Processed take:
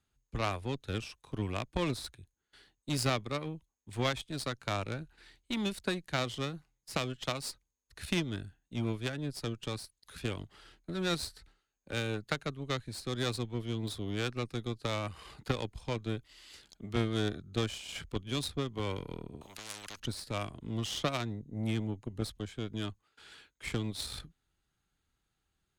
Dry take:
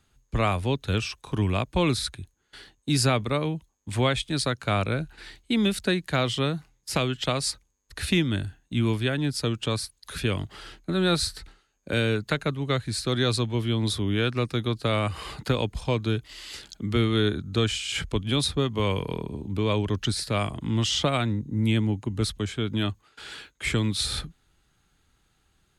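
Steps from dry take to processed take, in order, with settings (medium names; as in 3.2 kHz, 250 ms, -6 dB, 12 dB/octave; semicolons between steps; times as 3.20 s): Chebyshev shaper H 3 -13 dB, 8 -30 dB, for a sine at -10.5 dBFS; 19.41–20.00 s: spectrum-flattening compressor 10:1; trim -4 dB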